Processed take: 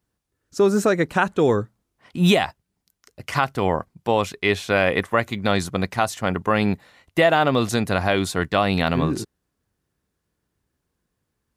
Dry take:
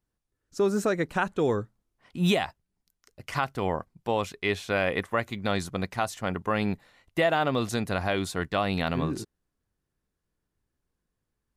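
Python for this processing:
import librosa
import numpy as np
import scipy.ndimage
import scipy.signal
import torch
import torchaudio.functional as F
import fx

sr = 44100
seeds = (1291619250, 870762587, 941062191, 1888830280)

y = scipy.signal.sosfilt(scipy.signal.butter(2, 54.0, 'highpass', fs=sr, output='sos'), x)
y = y * 10.0 ** (7.0 / 20.0)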